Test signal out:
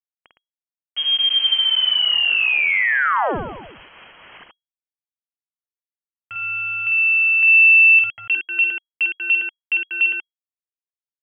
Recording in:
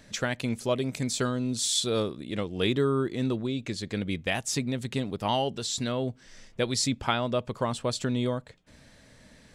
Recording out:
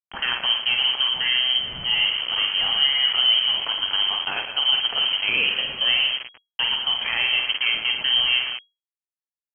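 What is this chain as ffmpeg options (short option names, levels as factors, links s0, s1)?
-filter_complex "[0:a]highpass=f=56:w=0.5412,highpass=f=56:w=1.3066,asplit=2[s0][s1];[s1]acompressor=threshold=0.0158:ratio=8,volume=0.794[s2];[s0][s2]amix=inputs=2:normalize=0,alimiter=limit=0.1:level=0:latency=1:release=28,asplit=2[s3][s4];[s4]aecho=0:1:50|112.5|190.6|288.3|410.4:0.631|0.398|0.251|0.158|0.1[s5];[s3][s5]amix=inputs=2:normalize=0,aeval=exprs='val(0)*gte(abs(val(0)),0.0251)':c=same,lowpass=f=2800:t=q:w=0.5098,lowpass=f=2800:t=q:w=0.6013,lowpass=f=2800:t=q:w=0.9,lowpass=f=2800:t=q:w=2.563,afreqshift=-3300,volume=2.11"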